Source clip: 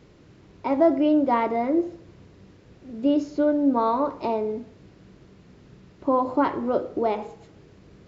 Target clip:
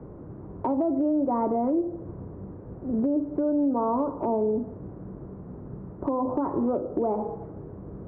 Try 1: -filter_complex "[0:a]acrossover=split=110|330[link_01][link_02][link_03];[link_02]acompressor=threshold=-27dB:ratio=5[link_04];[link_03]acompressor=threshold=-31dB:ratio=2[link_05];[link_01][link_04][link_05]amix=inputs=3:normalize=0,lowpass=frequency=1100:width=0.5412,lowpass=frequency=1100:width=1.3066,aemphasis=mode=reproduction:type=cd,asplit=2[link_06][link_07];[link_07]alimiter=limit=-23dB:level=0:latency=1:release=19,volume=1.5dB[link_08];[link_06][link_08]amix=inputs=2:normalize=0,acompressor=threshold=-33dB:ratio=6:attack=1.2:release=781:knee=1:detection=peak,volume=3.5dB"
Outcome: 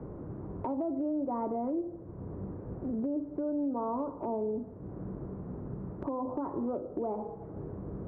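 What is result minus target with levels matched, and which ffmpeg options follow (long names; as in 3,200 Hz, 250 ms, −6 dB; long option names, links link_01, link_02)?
downward compressor: peak gain reduction +8 dB
-filter_complex "[0:a]acrossover=split=110|330[link_01][link_02][link_03];[link_02]acompressor=threshold=-27dB:ratio=5[link_04];[link_03]acompressor=threshold=-31dB:ratio=2[link_05];[link_01][link_04][link_05]amix=inputs=3:normalize=0,lowpass=frequency=1100:width=0.5412,lowpass=frequency=1100:width=1.3066,aemphasis=mode=reproduction:type=cd,asplit=2[link_06][link_07];[link_07]alimiter=limit=-23dB:level=0:latency=1:release=19,volume=1.5dB[link_08];[link_06][link_08]amix=inputs=2:normalize=0,acompressor=threshold=-23.5dB:ratio=6:attack=1.2:release=781:knee=1:detection=peak,volume=3.5dB"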